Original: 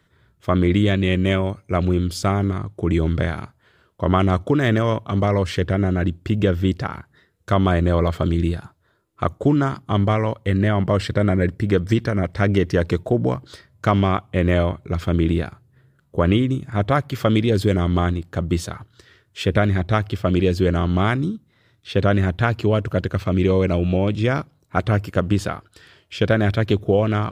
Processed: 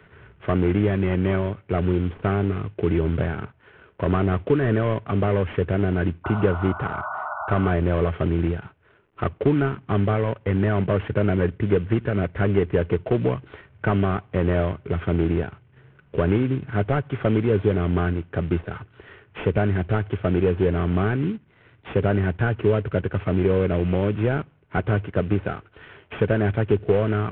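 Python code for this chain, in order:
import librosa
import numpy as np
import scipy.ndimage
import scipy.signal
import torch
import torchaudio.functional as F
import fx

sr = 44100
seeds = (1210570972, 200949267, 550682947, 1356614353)

y = fx.cvsd(x, sr, bps=16000)
y = fx.spec_paint(y, sr, seeds[0], shape='noise', start_s=6.24, length_s=1.47, low_hz=590.0, high_hz=1500.0, level_db=-32.0)
y = fx.small_body(y, sr, hz=(420.0, 1500.0), ring_ms=45, db=7)
y = fx.band_squash(y, sr, depth_pct=40)
y = y * librosa.db_to_amplitude(-2.5)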